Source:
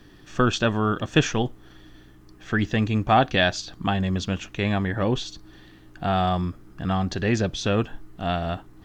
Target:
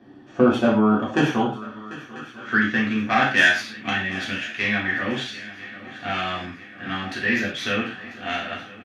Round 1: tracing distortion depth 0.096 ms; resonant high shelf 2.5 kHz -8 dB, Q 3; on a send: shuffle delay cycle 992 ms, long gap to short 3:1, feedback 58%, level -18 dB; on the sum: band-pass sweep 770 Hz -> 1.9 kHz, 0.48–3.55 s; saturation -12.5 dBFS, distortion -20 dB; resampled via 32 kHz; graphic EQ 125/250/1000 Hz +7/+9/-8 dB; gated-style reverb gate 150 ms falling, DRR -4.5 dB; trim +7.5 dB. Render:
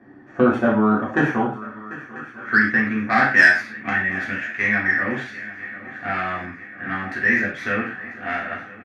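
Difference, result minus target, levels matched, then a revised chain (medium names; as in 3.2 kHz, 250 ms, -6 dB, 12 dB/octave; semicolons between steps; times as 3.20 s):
4 kHz band -12.5 dB
tracing distortion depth 0.096 ms; on a send: shuffle delay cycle 992 ms, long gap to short 3:1, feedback 58%, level -18 dB; on the sum: band-pass sweep 770 Hz -> 1.9 kHz, 0.48–3.55 s; saturation -12.5 dBFS, distortion -26 dB; resampled via 32 kHz; graphic EQ 125/250/1000 Hz +7/+9/-8 dB; gated-style reverb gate 150 ms falling, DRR -4.5 dB; trim +7.5 dB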